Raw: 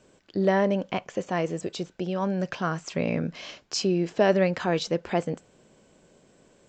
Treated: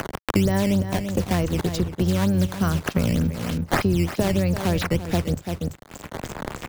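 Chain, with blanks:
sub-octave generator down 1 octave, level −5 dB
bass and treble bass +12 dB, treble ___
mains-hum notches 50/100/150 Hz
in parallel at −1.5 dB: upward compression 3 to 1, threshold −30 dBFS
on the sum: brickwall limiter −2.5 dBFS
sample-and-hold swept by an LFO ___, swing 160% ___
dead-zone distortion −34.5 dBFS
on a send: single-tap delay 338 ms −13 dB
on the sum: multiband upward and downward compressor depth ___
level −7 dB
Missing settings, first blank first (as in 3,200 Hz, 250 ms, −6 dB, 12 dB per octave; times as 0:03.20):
+14 dB, 10×, 3.3 Hz, 100%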